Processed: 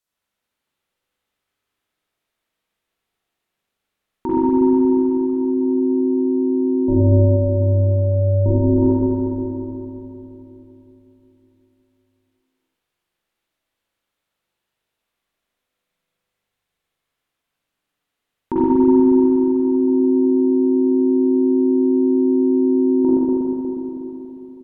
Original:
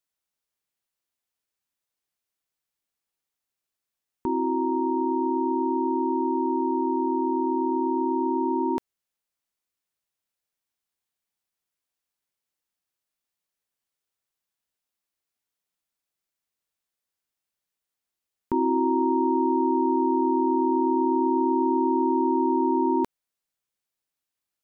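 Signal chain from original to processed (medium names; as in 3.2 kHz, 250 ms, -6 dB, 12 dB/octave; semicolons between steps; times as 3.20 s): delay 80 ms -15 dB; 6.88–8.46 s: frequency shift -360 Hz; low-pass that closes with the level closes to 460 Hz, closed at -22 dBFS; spring tank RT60 3.7 s, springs 40/46/60 ms, chirp 25 ms, DRR -9.5 dB; trim +2.5 dB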